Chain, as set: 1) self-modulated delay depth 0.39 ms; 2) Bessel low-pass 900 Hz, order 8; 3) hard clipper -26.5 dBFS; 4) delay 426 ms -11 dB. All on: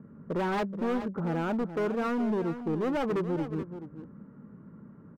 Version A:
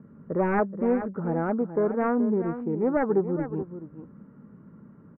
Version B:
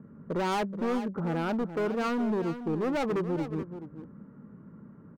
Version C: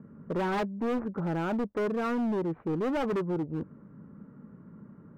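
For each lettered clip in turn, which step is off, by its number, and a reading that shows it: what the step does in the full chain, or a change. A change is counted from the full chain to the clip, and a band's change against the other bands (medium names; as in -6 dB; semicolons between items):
3, distortion -7 dB; 1, 4 kHz band +4.0 dB; 4, crest factor change -2.0 dB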